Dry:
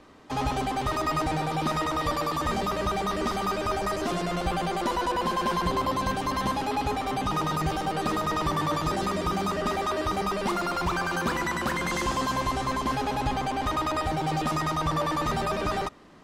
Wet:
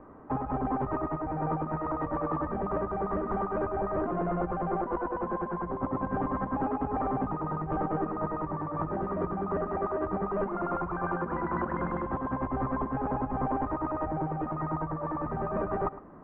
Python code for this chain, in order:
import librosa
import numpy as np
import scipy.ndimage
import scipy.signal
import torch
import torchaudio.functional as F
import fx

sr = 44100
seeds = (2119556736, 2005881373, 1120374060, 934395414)

p1 = fx.over_compress(x, sr, threshold_db=-30.0, ratio=-0.5)
p2 = scipy.signal.sosfilt(scipy.signal.cheby2(4, 70, 5800.0, 'lowpass', fs=sr, output='sos'), p1)
y = p2 + fx.echo_single(p2, sr, ms=109, db=-16.0, dry=0)